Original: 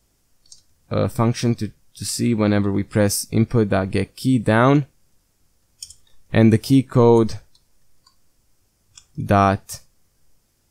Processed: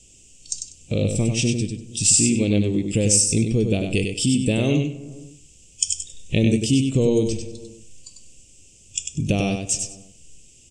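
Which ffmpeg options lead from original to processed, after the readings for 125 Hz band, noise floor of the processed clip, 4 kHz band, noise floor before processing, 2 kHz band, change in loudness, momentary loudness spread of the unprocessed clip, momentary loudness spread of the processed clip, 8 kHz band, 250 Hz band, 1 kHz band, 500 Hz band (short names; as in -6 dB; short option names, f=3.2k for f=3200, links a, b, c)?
-2.0 dB, -51 dBFS, +5.0 dB, -65 dBFS, -4.0 dB, -2.5 dB, 14 LU, 14 LU, +11.0 dB, -2.5 dB, -17.5 dB, -4.5 dB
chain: -filter_complex "[0:a]asplit=2[a][b];[b]adelay=156,lowpass=f=1.5k:p=1,volume=-23dB,asplit=2[c][d];[d]adelay=156,lowpass=f=1.5k:p=1,volume=0.52,asplit=2[e][f];[f]adelay=156,lowpass=f=1.5k:p=1,volume=0.52[g];[c][e][g]amix=inputs=3:normalize=0[h];[a][h]amix=inputs=2:normalize=0,acompressor=threshold=-35dB:ratio=2,firequalizer=gain_entry='entry(460,0);entry(960,-20);entry(1500,-24);entry(2700,13);entry(4200,-2);entry(7600,15);entry(12000,-20)':delay=0.05:min_phase=1,asplit=2[i][j];[j]aecho=0:1:97|194|291:0.531|0.106|0.0212[k];[i][k]amix=inputs=2:normalize=0,volume=8.5dB"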